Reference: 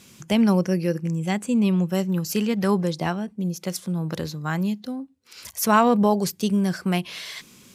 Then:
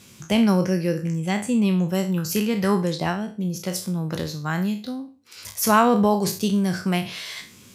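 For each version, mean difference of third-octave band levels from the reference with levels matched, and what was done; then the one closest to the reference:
3.0 dB: peak hold with a decay on every bin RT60 0.36 s
parametric band 100 Hz +10 dB 0.21 octaves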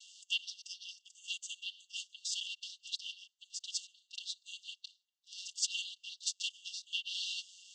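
18.5 dB: channel vocoder with a chord as carrier major triad, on F#3
linear-phase brick-wall high-pass 2,700 Hz
level +14 dB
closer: first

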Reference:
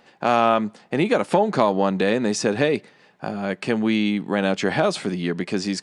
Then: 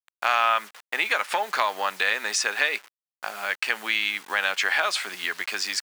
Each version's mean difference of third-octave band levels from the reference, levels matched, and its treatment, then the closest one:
13.5 dB: hold until the input has moved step −40 dBFS
Chebyshev high-pass filter 1,400 Hz, order 2
dynamic equaliser 2,000 Hz, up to +4 dB, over −35 dBFS, Q 0.84
downward compressor 1.5 to 1, threshold −33 dBFS, peak gain reduction 6 dB
level +6.5 dB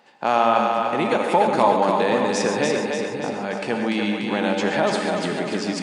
7.5 dB: high-pass filter 240 Hz 6 dB per octave
parametric band 880 Hz +6 dB 0.31 octaves
echo with a time of its own for lows and highs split 360 Hz, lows 545 ms, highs 292 ms, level −4 dB
reverb whose tail is shaped and stops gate 160 ms rising, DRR 5 dB
level −2 dB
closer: second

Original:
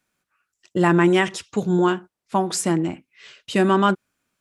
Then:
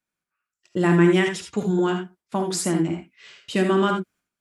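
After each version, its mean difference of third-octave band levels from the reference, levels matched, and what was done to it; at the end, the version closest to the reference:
3.0 dB: noise gate −54 dBFS, range −10 dB
dynamic equaliser 950 Hz, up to −6 dB, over −32 dBFS, Q 1.5
reverb whose tail is shaped and stops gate 100 ms rising, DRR 4 dB
level −2.5 dB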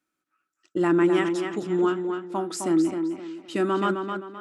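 5.5 dB: low-shelf EQ 170 Hz −7 dB
hollow resonant body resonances 310/1,300 Hz, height 15 dB, ringing for 60 ms
on a send: tape delay 259 ms, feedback 37%, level −5 dB, low-pass 4,600 Hz
on the sum: level −9 dB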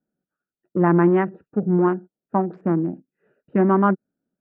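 7.5 dB: adaptive Wiener filter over 41 samples
low-pass filter 1,600 Hz 24 dB per octave
low shelf with overshoot 130 Hz −9.5 dB, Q 1.5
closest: first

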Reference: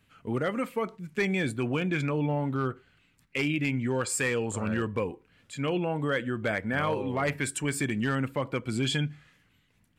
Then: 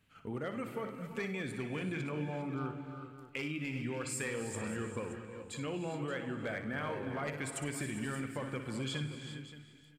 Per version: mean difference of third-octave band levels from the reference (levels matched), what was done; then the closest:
7.0 dB: noise gate −56 dBFS, range −6 dB
downward compressor 2 to 1, threshold −45 dBFS, peak gain reduction 12 dB
on a send: multi-tap delay 60/100/406/575 ms −10/−17.5/−14.5/−14 dB
on the sum: reverb whose tail is shaped and stops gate 420 ms rising, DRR 8 dB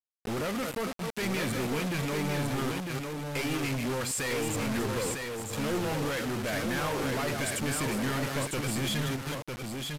13.5 dB: delay that plays each chunk backwards 187 ms, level −11 dB
log-companded quantiser 2 bits
single-tap delay 952 ms −4.5 dB
downsampling to 32,000 Hz
level −5.5 dB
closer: first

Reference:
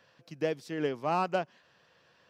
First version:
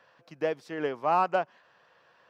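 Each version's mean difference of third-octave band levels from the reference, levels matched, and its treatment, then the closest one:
3.5 dB: parametric band 1,000 Hz +12.5 dB 2.8 octaves
level −6.5 dB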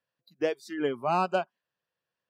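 7.5 dB: noise reduction from a noise print of the clip's start 27 dB
level +3 dB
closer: first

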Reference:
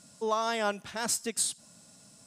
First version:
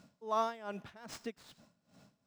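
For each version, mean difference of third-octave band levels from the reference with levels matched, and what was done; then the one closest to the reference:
7.5 dB: running median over 5 samples
high-shelf EQ 3,100 Hz −10 dB
tremolo with a sine in dB 2.5 Hz, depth 20 dB
level +1 dB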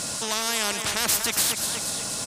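15.0 dB: on a send: repeating echo 239 ms, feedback 43%, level −18.5 dB
on the sum: every bin compressed towards the loudest bin 4 to 1
level +8.5 dB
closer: first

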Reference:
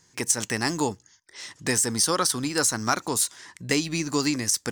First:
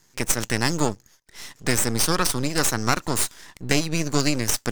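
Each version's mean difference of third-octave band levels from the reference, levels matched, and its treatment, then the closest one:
4.0 dB: high-pass filter 48 Hz
dynamic equaliser 150 Hz, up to +4 dB, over −42 dBFS, Q 0.83
half-wave rectification
level +4.5 dB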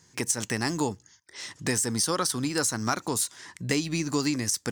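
1.5 dB: in parallel at +2.5 dB: downward compressor, threshold −30 dBFS, peak gain reduction 12.5 dB
on the sum: high-pass filter 55 Hz
low-shelf EQ 270 Hz +4.5 dB
level −7 dB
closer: second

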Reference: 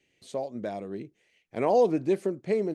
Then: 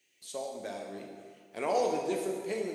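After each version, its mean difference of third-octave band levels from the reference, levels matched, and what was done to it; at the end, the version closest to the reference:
10.0 dB: RIAA equalisation recording
dense smooth reverb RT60 1.9 s, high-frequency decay 0.75×, DRR 0 dB
level −5.5 dB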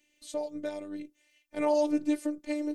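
6.5 dB: high-shelf EQ 4,800 Hz +10 dB
phases set to zero 297 Hz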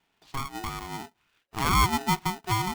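17.5 dB: high-frequency loss of the air 180 metres
ring modulator with a square carrier 550 Hz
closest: second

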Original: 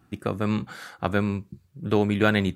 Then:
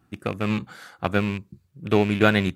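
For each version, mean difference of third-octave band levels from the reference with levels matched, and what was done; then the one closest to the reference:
2.5 dB: loose part that buzzes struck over −25 dBFS, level −22 dBFS
expander for the loud parts 1.5 to 1, over −30 dBFS
level +3.5 dB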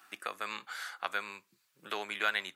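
11.0 dB: high-pass filter 1,200 Hz 12 dB per octave
multiband upward and downward compressor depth 40%
level −2 dB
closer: first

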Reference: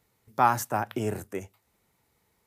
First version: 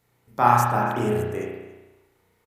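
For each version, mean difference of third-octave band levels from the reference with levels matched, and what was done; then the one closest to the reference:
6.5 dB: on a send: single-tap delay 284 ms −22.5 dB
on the sum: spring reverb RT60 1.1 s, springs 33 ms, chirp 70 ms, DRR −4.5 dB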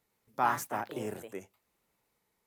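3.0 dB: parametric band 88 Hz −10.5 dB 0.98 octaves
delay with pitch and tempo change per echo 106 ms, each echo +3 semitones, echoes 2, each echo −6 dB
level −7 dB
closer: second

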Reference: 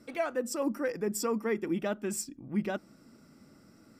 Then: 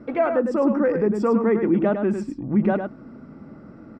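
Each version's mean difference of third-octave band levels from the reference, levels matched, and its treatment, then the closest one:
7.0 dB: low-pass filter 1,300 Hz 12 dB per octave
in parallel at +3 dB: brickwall limiter −31 dBFS, peak gain reduction 11 dB
on the sum: single-tap delay 104 ms −7 dB
level +7 dB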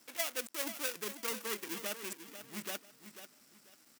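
13.5 dB: gap after every zero crossing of 0.29 ms
spectral tilt +4.5 dB per octave
repeating echo 492 ms, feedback 26%, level −11 dB
level −6.5 dB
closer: first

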